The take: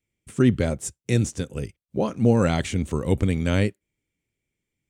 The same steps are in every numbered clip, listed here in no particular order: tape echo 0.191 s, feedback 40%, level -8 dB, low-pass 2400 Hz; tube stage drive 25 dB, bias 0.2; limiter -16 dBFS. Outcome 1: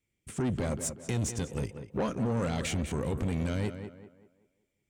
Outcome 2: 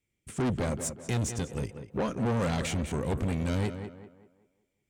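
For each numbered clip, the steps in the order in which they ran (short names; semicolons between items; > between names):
limiter > tape echo > tube stage; tape echo > tube stage > limiter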